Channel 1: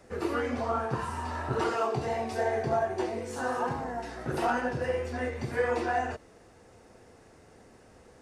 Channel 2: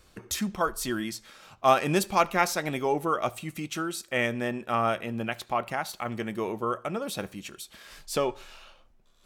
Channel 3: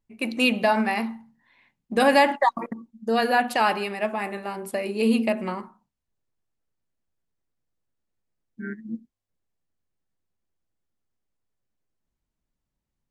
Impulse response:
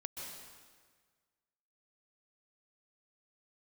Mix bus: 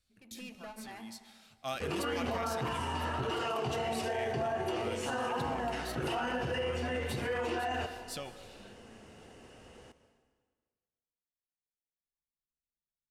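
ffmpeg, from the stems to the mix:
-filter_complex "[0:a]equalizer=f=2.9k:w=5.2:g=13.5,adelay=1700,volume=-1.5dB,asplit=2[a][b];[b]volume=-6.5dB[c];[1:a]equalizer=f=400:t=o:w=0.67:g=-12,equalizer=f=1k:t=o:w=0.67:g=-11,equalizer=f=4k:t=o:w=0.67:g=6,equalizer=f=10k:t=o:w=0.67:g=4,volume=-12dB,afade=t=in:st=1.02:d=0.24:silence=0.298538,asplit=3[d][e][f];[e]volume=-11dB[g];[2:a]alimiter=limit=-18dB:level=0:latency=1:release=392,asoftclip=type=tanh:threshold=-28dB,volume=-17dB,asplit=2[h][i];[i]volume=-4dB[j];[f]apad=whole_len=577718[k];[h][k]sidechaingate=range=-33dB:threshold=-57dB:ratio=16:detection=peak[l];[3:a]atrim=start_sample=2205[m];[c][g][j]amix=inputs=3:normalize=0[n];[n][m]afir=irnorm=-1:irlink=0[o];[a][d][l][o]amix=inputs=4:normalize=0,alimiter=level_in=2dB:limit=-24dB:level=0:latency=1:release=33,volume=-2dB"

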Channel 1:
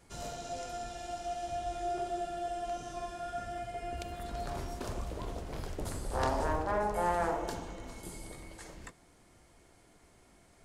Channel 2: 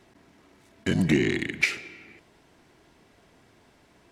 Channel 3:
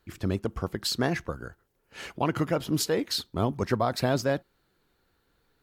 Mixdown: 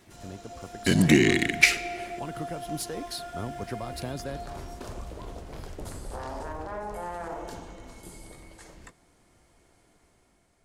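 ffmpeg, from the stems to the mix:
-filter_complex "[0:a]alimiter=level_in=3dB:limit=-24dB:level=0:latency=1:release=41,volume=-3dB,volume=-6.5dB[a];[1:a]crystalizer=i=1.5:c=0,volume=-1.5dB[b];[2:a]equalizer=f=10k:t=o:w=0.29:g=12.5,acrossover=split=300|3000[c][d][e];[d]acompressor=threshold=-27dB:ratio=6[f];[c][f][e]amix=inputs=3:normalize=0,aeval=exprs='clip(val(0),-1,0.106)':c=same,volume=-14dB[g];[a][b][g]amix=inputs=3:normalize=0,dynaudnorm=f=230:g=7:m=6dB"

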